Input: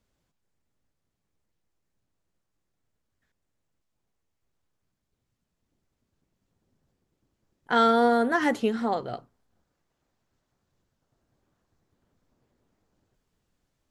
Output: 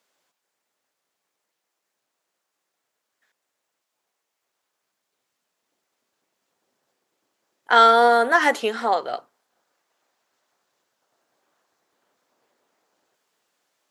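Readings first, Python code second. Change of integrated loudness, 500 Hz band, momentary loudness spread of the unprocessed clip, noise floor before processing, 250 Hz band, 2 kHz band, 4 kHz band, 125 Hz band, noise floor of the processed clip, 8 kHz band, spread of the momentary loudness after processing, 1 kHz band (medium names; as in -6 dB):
+6.5 dB, +5.0 dB, 14 LU, -80 dBFS, -5.5 dB, +9.0 dB, +9.0 dB, no reading, -80 dBFS, +9.0 dB, 14 LU, +8.5 dB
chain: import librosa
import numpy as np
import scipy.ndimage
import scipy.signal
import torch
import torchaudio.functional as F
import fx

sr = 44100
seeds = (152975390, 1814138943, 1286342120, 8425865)

y = scipy.signal.sosfilt(scipy.signal.butter(2, 580.0, 'highpass', fs=sr, output='sos'), x)
y = y * librosa.db_to_amplitude(9.0)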